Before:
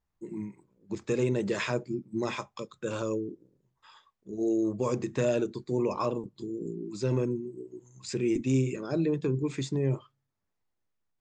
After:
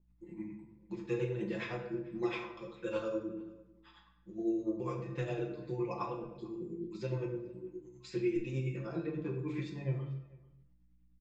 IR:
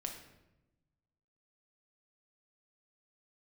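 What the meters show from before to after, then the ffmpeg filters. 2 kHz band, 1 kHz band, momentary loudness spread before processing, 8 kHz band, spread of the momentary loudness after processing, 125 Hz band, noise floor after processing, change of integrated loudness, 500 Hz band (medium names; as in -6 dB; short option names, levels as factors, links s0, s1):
-6.0 dB, -6.0 dB, 13 LU, under -15 dB, 12 LU, -6.5 dB, -66 dBFS, -7.5 dB, -7.5 dB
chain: -filter_complex "[0:a]lowpass=3100,tiltshelf=f=1200:g=-4,aecho=1:1:5.9:0.95,bandreject=f=47.8:t=h:w=4,bandreject=f=95.6:t=h:w=4,bandreject=f=143.4:t=h:w=4,bandreject=f=191.2:t=h:w=4,bandreject=f=239:t=h:w=4,bandreject=f=286.8:t=h:w=4,bandreject=f=334.6:t=h:w=4,bandreject=f=382.4:t=h:w=4,bandreject=f=430.2:t=h:w=4,bandreject=f=478:t=h:w=4,bandreject=f=525.8:t=h:w=4,bandreject=f=573.6:t=h:w=4,bandreject=f=621.4:t=h:w=4,bandreject=f=669.2:t=h:w=4,bandreject=f=717:t=h:w=4,bandreject=f=764.8:t=h:w=4,bandreject=f=812.6:t=h:w=4,bandreject=f=860.4:t=h:w=4,bandreject=f=908.2:t=h:w=4,bandreject=f=956:t=h:w=4,bandreject=f=1003.8:t=h:w=4,bandreject=f=1051.6:t=h:w=4,bandreject=f=1099.4:t=h:w=4,bandreject=f=1147.2:t=h:w=4,bandreject=f=1195:t=h:w=4,bandreject=f=1242.8:t=h:w=4,bandreject=f=1290.6:t=h:w=4,bandreject=f=1338.4:t=h:w=4,bandreject=f=1386.2:t=h:w=4,bandreject=f=1434:t=h:w=4,bandreject=f=1481.8:t=h:w=4,bandreject=f=1529.6:t=h:w=4,bandreject=f=1577.4:t=h:w=4,bandreject=f=1625.2:t=h:w=4,bandreject=f=1673:t=h:w=4,bandreject=f=1720.8:t=h:w=4,bandreject=f=1768.6:t=h:w=4,alimiter=limit=0.0841:level=0:latency=1:release=287,flanger=delay=6.7:depth=4.7:regen=65:speed=0.18:shape=sinusoidal,aeval=exprs='val(0)+0.000447*(sin(2*PI*60*n/s)+sin(2*PI*2*60*n/s)/2+sin(2*PI*3*60*n/s)/3+sin(2*PI*4*60*n/s)/4+sin(2*PI*5*60*n/s)/5)':c=same,tremolo=f=9.8:d=0.72,asplit=2[s0][s1];[s1]adelay=443.1,volume=0.0708,highshelf=f=4000:g=-9.97[s2];[s0][s2]amix=inputs=2:normalize=0[s3];[1:a]atrim=start_sample=2205,afade=t=out:st=0.4:d=0.01,atrim=end_sample=18081[s4];[s3][s4]afir=irnorm=-1:irlink=0,adynamicequalizer=threshold=0.002:dfrequency=2000:dqfactor=0.7:tfrequency=2000:tqfactor=0.7:attack=5:release=100:ratio=0.375:range=2:mode=cutabove:tftype=highshelf,volume=1.33"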